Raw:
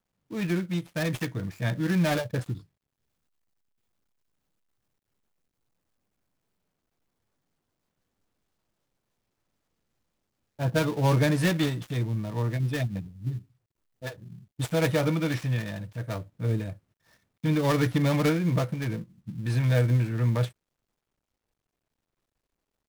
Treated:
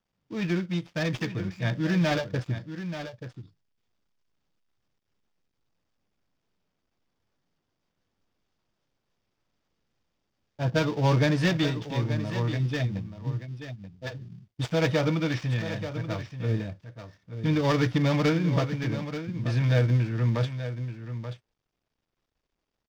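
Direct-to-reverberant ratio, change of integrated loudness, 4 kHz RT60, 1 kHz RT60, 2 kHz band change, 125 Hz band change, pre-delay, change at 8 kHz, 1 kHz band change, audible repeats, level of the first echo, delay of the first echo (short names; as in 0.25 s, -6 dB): none, 0.0 dB, none, none, +1.0 dB, +0.5 dB, none, -4.0 dB, +0.5 dB, 1, -10.5 dB, 0.882 s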